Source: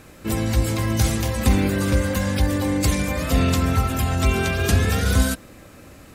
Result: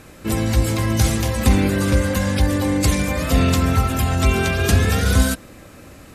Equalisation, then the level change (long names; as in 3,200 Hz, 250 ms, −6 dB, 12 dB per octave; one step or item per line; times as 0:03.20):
linear-phase brick-wall low-pass 14,000 Hz
+2.5 dB